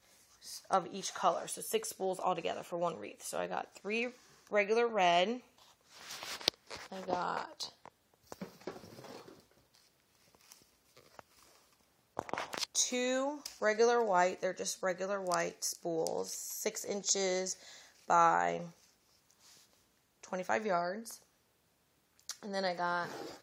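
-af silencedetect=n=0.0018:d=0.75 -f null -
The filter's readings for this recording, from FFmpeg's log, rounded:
silence_start: 21.22
silence_end: 22.20 | silence_duration: 0.97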